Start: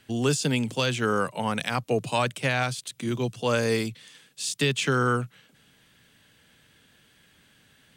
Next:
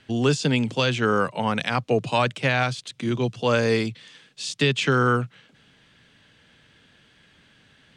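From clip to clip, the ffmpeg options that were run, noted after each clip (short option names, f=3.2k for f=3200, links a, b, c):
-af "lowpass=5.2k,volume=3.5dB"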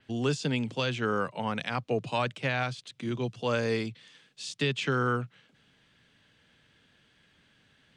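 -af "adynamicequalizer=threshold=0.00794:dfrequency=5500:dqfactor=0.7:tfrequency=5500:tqfactor=0.7:attack=5:release=100:ratio=0.375:range=2.5:mode=cutabove:tftype=highshelf,volume=-7.5dB"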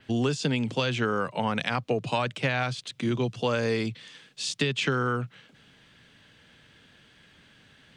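-af "acompressor=threshold=-30dB:ratio=6,volume=7.5dB"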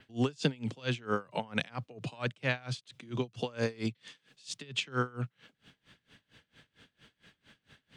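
-af "aeval=exprs='val(0)*pow(10,-27*(0.5-0.5*cos(2*PI*4.4*n/s))/20)':c=same"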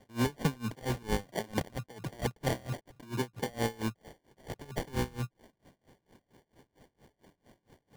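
-af "acrusher=samples=34:mix=1:aa=0.000001"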